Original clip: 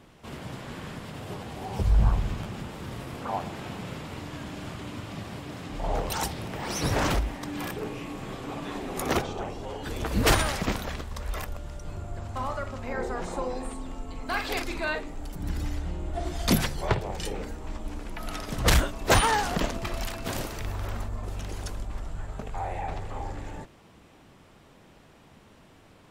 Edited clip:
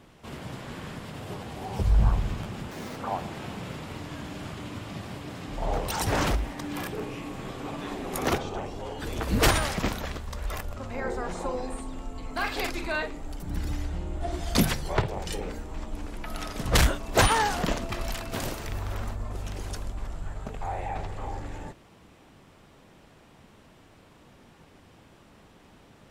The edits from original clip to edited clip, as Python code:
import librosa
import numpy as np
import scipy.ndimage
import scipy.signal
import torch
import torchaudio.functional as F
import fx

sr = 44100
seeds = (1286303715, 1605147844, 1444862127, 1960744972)

y = fx.edit(x, sr, fx.speed_span(start_s=2.71, length_s=0.47, speed=1.86),
    fx.cut(start_s=6.28, length_s=0.62),
    fx.cut(start_s=11.6, length_s=1.09), tone=tone)